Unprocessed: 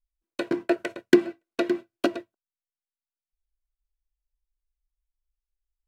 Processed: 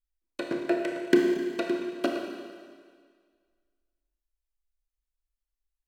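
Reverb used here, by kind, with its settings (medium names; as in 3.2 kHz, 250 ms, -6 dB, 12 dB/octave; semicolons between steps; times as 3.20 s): Schroeder reverb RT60 1.8 s, combs from 25 ms, DRR 1.5 dB; trim -4.5 dB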